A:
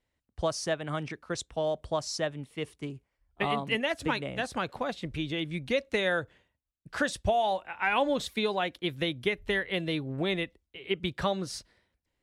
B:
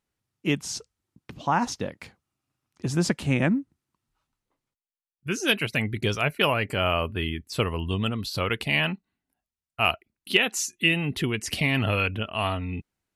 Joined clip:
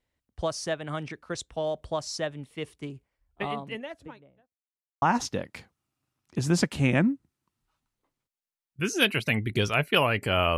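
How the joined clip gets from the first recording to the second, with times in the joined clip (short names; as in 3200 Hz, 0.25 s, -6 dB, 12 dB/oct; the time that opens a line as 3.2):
A
3.01–4.57 studio fade out
4.57–5.02 mute
5.02 switch to B from 1.49 s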